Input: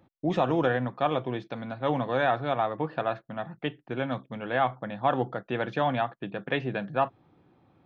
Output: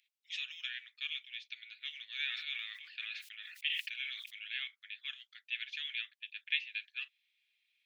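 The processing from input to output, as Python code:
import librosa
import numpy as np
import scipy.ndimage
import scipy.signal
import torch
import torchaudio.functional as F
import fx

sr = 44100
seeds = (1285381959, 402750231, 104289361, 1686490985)

y = scipy.signal.sosfilt(scipy.signal.butter(8, 2300.0, 'highpass', fs=sr, output='sos'), x)
y = fx.high_shelf(y, sr, hz=3000.0, db=-11.0)
y = fx.sustainer(y, sr, db_per_s=40.0, at=(2.27, 4.48))
y = y * librosa.db_to_amplitude(9.5)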